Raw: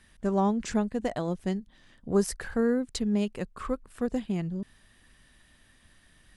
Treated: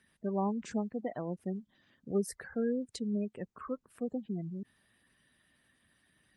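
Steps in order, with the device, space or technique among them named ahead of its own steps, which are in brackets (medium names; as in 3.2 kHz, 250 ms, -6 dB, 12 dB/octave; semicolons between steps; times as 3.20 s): 2.14–2.83 s: gate with hold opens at -29 dBFS; noise-suppressed video call (high-pass 110 Hz 12 dB/octave; spectral gate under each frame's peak -20 dB strong; trim -6.5 dB; Opus 32 kbps 48 kHz)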